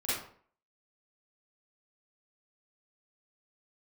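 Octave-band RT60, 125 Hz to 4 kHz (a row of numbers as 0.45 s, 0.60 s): 0.50 s, 0.55 s, 0.55 s, 0.50 s, 0.45 s, 0.35 s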